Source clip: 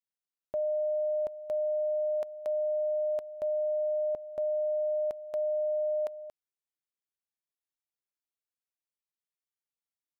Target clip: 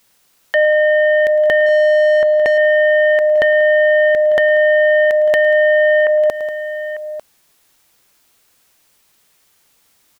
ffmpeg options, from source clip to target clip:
-filter_complex "[0:a]acompressor=threshold=0.0224:ratio=4,aeval=exprs='0.0501*sin(PI/2*2.82*val(0)/0.0501)':c=same,asettb=1/sr,asplit=3[s0][s1][s2];[s0]atrim=end=1.664[s3];[s1]atrim=start=1.66:end=2.58,asetpts=PTS-STARTPTS,afade=t=in:d=0.004:c=qsin,afade=t=out:st=0.916:d=0.004:c=qsin,asplit=2[s4][s5];[s5]highpass=f=720:p=1,volume=4.47,asoftclip=type=tanh:threshold=0.0501[s6];[s4][s6]amix=inputs=2:normalize=0,lowpass=f=1100:p=1,volume=0.501[s7];[s2]atrim=start=2.576[s8];[s3][s7]acrossfade=d=0.004:c1=hsin:c2=qsin[s9];[s9][s8]acrossfade=d=0.004:c1=qsin:c2=hsin,asplit=2[s10][s11];[s11]aecho=0:1:108|188|897:0.119|0.126|0.112[s12];[s10][s12]amix=inputs=2:normalize=0,alimiter=level_in=39.8:limit=0.891:release=50:level=0:latency=1,volume=0.398"

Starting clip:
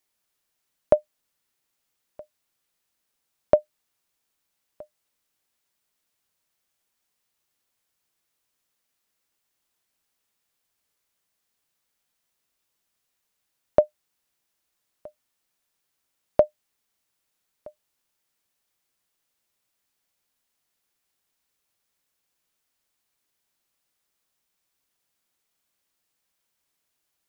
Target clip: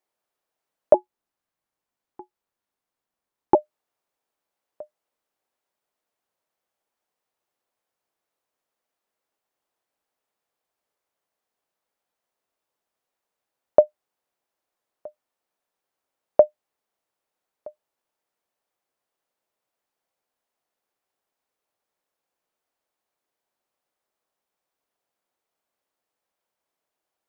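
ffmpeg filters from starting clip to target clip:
-filter_complex "[0:a]equalizer=f=630:w=0.46:g=14.5,asettb=1/sr,asplit=3[s0][s1][s2];[s0]atrim=end=0.944[s3];[s1]atrim=start=0.94:end=3.55,asetpts=PTS-STARTPTS,afade=t=in:d=0.004:c=qsin,afade=t=out:st=2.606:d=0.004:c=qsin,aeval=exprs='val(0)*sin(2*PI*240*n/s)':c=same[s4];[s2]atrim=start=3.546[s5];[s3][s4]acrossfade=d=0.004:c1=hsin:c2=qsin[s6];[s6][s5]acrossfade=d=0.004:c1=qsin:c2=hsin,volume=0.299"

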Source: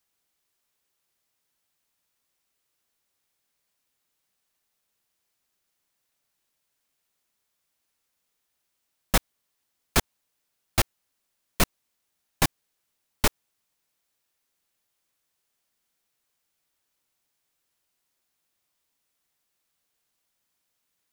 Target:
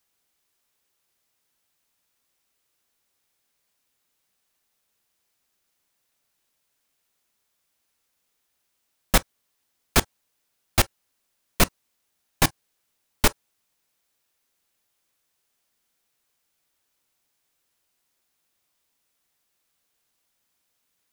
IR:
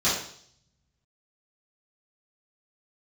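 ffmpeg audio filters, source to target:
-filter_complex "[0:a]asplit=2[s0][s1];[1:a]atrim=start_sample=2205,atrim=end_sample=3087,asetrate=61740,aresample=44100[s2];[s1][s2]afir=irnorm=-1:irlink=0,volume=0.0299[s3];[s0][s3]amix=inputs=2:normalize=0,volume=1.41"

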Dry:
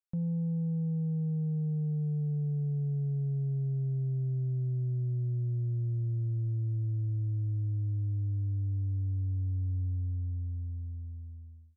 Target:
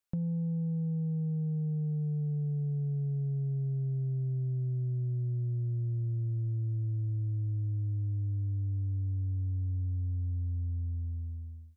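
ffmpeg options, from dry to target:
-af "acompressor=threshold=0.0141:ratio=6,volume=2"

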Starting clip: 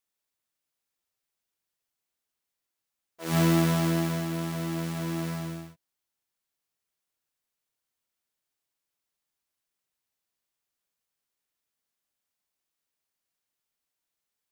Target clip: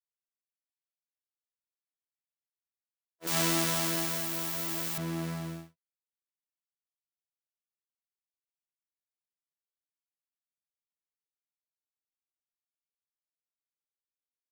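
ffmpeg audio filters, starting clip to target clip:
-filter_complex "[0:a]agate=range=0.0224:threshold=0.0178:ratio=3:detection=peak,asettb=1/sr,asplit=3[s0][s1][s2];[s0]atrim=end=3.274[s3];[s1]atrim=start=3.27:end=4.98,asetpts=PTS-STARTPTS,afade=t=in:d=0.004:c=qsin,afade=t=out:st=1.706:d=0.004:c=qsin,aemphasis=mode=production:type=riaa[s4];[s2]atrim=start=4.976[s5];[s3][s4]acrossfade=d=0.004:c1=hsin:c2=qsin[s6];[s6][s5]acrossfade=d=0.004:c1=qsin:c2=hsin,acrossover=split=8400[s7][s8];[s8]acompressor=threshold=0.0355:ratio=4:attack=1:release=60[s9];[s7][s9]amix=inputs=2:normalize=0,volume=0.708"

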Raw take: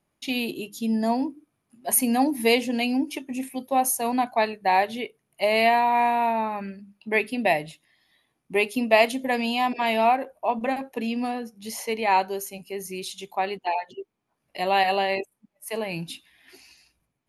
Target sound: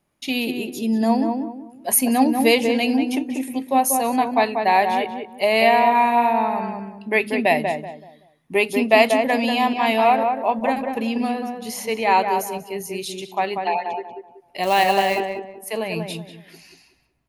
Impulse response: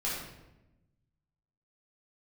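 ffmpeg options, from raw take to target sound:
-filter_complex "[0:a]asettb=1/sr,asplit=3[s0][s1][s2];[s0]atrim=end=14.634[s3];[s1]atrim=start=14.63:end=15.2,asetpts=PTS-STARTPTS,afade=t=in:d=0.004:c=qsin,afade=t=out:st=0.566:d=0.004:c=qsin,acrusher=bits=4:mode=log:mix=0:aa=0.000001[s4];[s2]atrim=start=15.196[s5];[s3][s4]acrossfade=d=0.004:c1=hsin:c2=qsin[s6];[s6][s5]acrossfade=d=0.004:c1=qsin:c2=hsin,asplit=2[s7][s8];[s8]adelay=189,lowpass=f=1400:p=1,volume=0.631,asplit=2[s9][s10];[s10]adelay=189,lowpass=f=1400:p=1,volume=0.32,asplit=2[s11][s12];[s12]adelay=189,lowpass=f=1400:p=1,volume=0.32,asplit=2[s13][s14];[s14]adelay=189,lowpass=f=1400:p=1,volume=0.32[s15];[s7][s9][s11][s13][s15]amix=inputs=5:normalize=0,volume=1.5"

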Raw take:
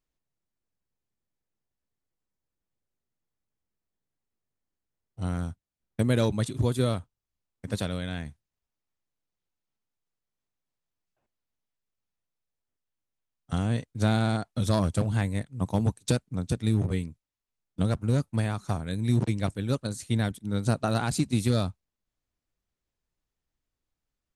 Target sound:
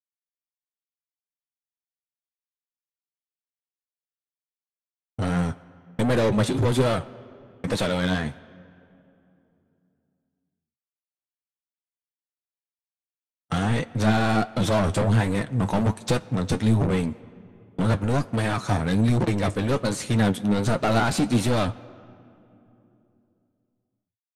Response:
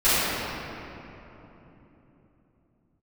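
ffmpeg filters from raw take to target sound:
-filter_complex "[0:a]agate=range=0.00282:threshold=0.00398:ratio=16:detection=peak,lowshelf=f=490:g=5,asoftclip=type=tanh:threshold=0.188,asplit=2[s0][s1];[s1]highpass=f=720:p=1,volume=22.4,asoftclip=type=tanh:threshold=0.168[s2];[s0][s2]amix=inputs=2:normalize=0,lowpass=f=2300:p=1,volume=0.501,flanger=delay=5.5:depth=6.1:regen=52:speed=1.3:shape=triangular,asplit=2[s3][s4];[1:a]atrim=start_sample=2205,asetrate=52920,aresample=44100,lowshelf=f=210:g=-9[s5];[s4][s5]afir=irnorm=-1:irlink=0,volume=0.0141[s6];[s3][s6]amix=inputs=2:normalize=0,aresample=32000,aresample=44100,volume=1.78"

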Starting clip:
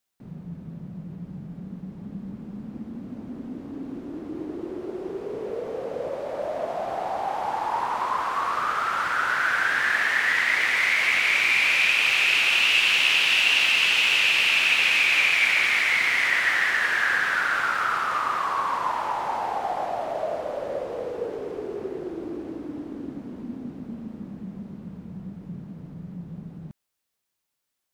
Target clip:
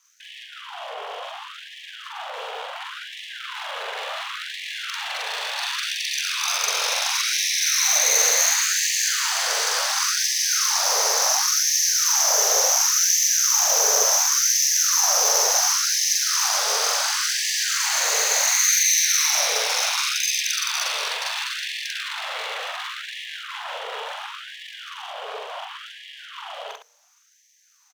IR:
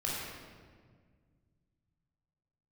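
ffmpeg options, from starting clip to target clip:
-filter_complex "[0:a]areverse,acompressor=threshold=0.0178:ratio=5,areverse,aeval=exprs='0.0631*sin(PI/2*5.62*val(0)/0.0631)':c=same,lowpass=f=3100:t=q:w=14,aeval=exprs='abs(val(0))':c=same,asplit=2[s0][s1];[s1]aecho=0:1:43.73|110.8:1|0.355[s2];[s0][s2]amix=inputs=2:normalize=0,afftfilt=real='re*gte(b*sr/1024,390*pow(1700/390,0.5+0.5*sin(2*PI*0.7*pts/sr)))':imag='im*gte(b*sr/1024,390*pow(1700/390,0.5+0.5*sin(2*PI*0.7*pts/sr)))':win_size=1024:overlap=0.75"

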